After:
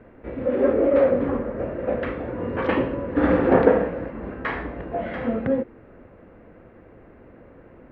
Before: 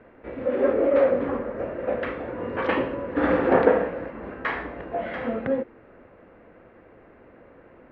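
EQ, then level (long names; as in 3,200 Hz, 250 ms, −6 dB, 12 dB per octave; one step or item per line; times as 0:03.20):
low-shelf EQ 300 Hz +9.5 dB
−1.0 dB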